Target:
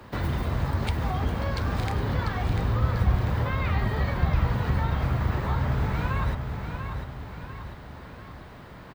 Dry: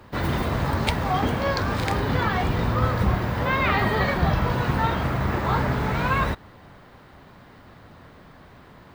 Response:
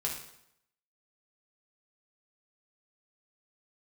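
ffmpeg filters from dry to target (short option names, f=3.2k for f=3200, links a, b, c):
-filter_complex "[0:a]acrossover=split=120[a][b];[b]acompressor=threshold=-33dB:ratio=5[c];[a][c]amix=inputs=2:normalize=0,aecho=1:1:694|1388|2082|2776|3470|4164:0.447|0.219|0.107|0.0526|0.0258|0.0126,volume=1.5dB"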